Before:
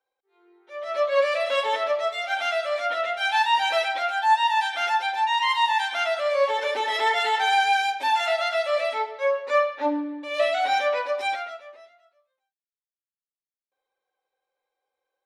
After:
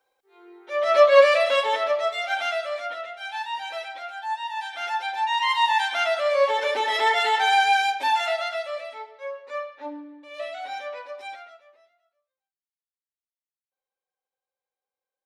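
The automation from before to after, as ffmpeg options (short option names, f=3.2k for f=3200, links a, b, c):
-af "volume=21.5dB,afade=t=out:st=0.85:d=0.79:silence=0.354813,afade=t=out:st=2.26:d=0.84:silence=0.281838,afade=t=in:st=4.5:d=1.26:silence=0.266073,afade=t=out:st=7.97:d=0.88:silence=0.237137"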